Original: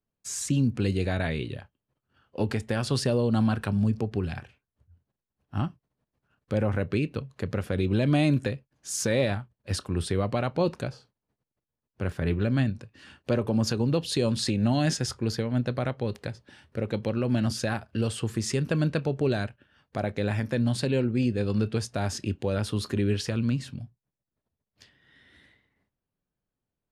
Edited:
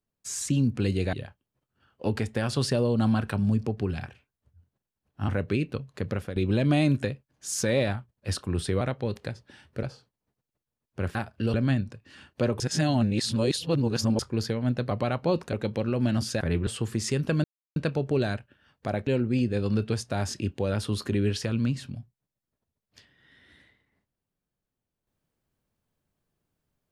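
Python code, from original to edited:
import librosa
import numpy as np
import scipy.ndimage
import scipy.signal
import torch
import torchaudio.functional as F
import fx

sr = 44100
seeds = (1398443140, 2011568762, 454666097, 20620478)

y = fx.edit(x, sr, fx.cut(start_s=1.13, length_s=0.34),
    fx.cut(start_s=5.63, length_s=1.08),
    fx.fade_out_to(start_s=7.49, length_s=0.29, curve='qsin', floor_db=-11.0),
    fx.swap(start_s=10.23, length_s=0.62, other_s=15.8, other_length_s=1.02),
    fx.swap(start_s=12.17, length_s=0.26, other_s=17.7, other_length_s=0.39),
    fx.reverse_span(start_s=13.49, length_s=1.59),
    fx.insert_silence(at_s=18.86, length_s=0.32),
    fx.cut(start_s=20.17, length_s=0.74), tone=tone)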